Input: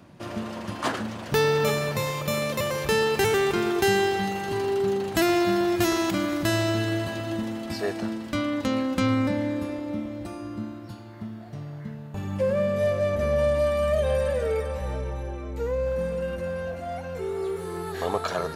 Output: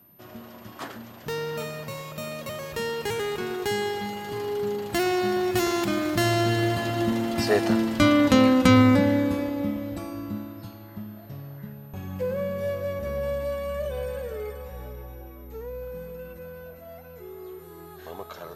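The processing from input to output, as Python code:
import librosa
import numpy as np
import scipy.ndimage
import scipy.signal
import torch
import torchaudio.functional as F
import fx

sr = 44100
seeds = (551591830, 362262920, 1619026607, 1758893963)

y = fx.doppler_pass(x, sr, speed_mps=15, closest_m=14.0, pass_at_s=8.14)
y = y + 10.0 ** (-63.0 / 20.0) * np.sin(2.0 * np.pi * 13000.0 * np.arange(len(y)) / sr)
y = y * 10.0 ** (8.5 / 20.0)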